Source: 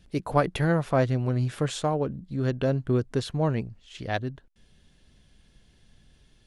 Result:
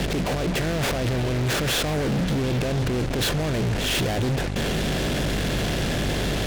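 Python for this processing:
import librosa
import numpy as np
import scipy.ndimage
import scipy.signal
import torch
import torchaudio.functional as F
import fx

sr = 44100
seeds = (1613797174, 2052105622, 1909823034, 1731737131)

p1 = fx.bin_compress(x, sr, power=0.6)
p2 = fx.low_shelf(p1, sr, hz=100.0, db=-8.5)
p3 = fx.over_compress(p2, sr, threshold_db=-33.0, ratio=-1.0)
p4 = fx.dmg_buzz(p3, sr, base_hz=50.0, harmonics=6, level_db=-45.0, tilt_db=-6, odd_only=False)
p5 = fx.leveller(p4, sr, passes=3)
p6 = scipy.signal.sosfilt(scipy.signal.butter(2, 3300.0, 'lowpass', fs=sr, output='sos'), p5)
p7 = fx.fuzz(p6, sr, gain_db=38.0, gate_db=-47.0)
p8 = fx.peak_eq(p7, sr, hz=1100.0, db=-7.0, octaves=1.0)
p9 = p8 + fx.echo_stepped(p8, sr, ms=251, hz=980.0, octaves=0.7, feedback_pct=70, wet_db=-10.0, dry=0)
y = F.gain(torch.from_numpy(p9), -8.0).numpy()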